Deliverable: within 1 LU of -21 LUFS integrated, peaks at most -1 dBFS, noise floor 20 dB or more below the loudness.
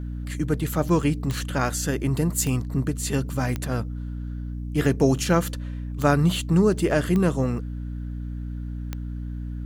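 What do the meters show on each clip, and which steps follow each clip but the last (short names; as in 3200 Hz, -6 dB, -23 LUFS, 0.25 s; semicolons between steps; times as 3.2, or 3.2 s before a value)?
clicks 6; hum 60 Hz; harmonics up to 300 Hz; hum level -29 dBFS; loudness -25.0 LUFS; peak -7.0 dBFS; loudness target -21.0 LUFS
-> de-click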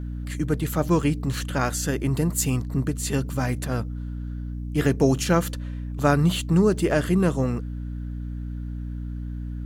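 clicks 0; hum 60 Hz; harmonics up to 300 Hz; hum level -29 dBFS
-> de-hum 60 Hz, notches 5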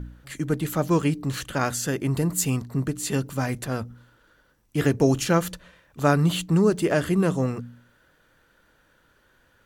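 hum none; loudness -24.5 LUFS; peak -7.5 dBFS; loudness target -21.0 LUFS
-> gain +3.5 dB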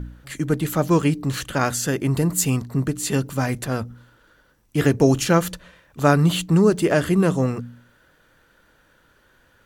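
loudness -21.0 LUFS; peak -4.0 dBFS; noise floor -59 dBFS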